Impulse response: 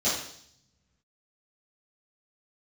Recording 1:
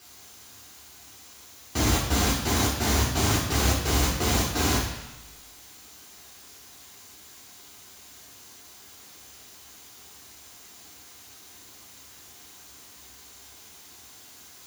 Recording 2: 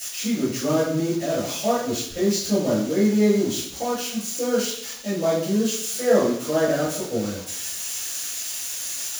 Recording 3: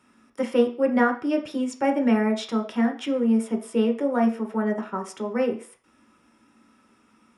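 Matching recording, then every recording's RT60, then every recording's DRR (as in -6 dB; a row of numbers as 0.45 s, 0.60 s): 2; 1.0 s, 0.65 s, 0.45 s; -4.0 dB, -13.0 dB, 2.5 dB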